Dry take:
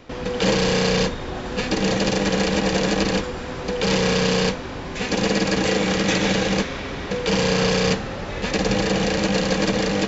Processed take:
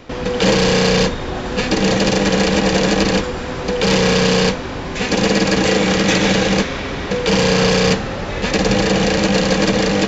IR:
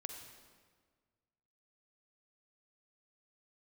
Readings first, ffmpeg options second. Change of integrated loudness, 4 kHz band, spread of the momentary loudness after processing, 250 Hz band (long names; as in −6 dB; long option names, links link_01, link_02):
+5.5 dB, +5.5 dB, 9 LU, +5.5 dB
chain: -af "acontrast=47"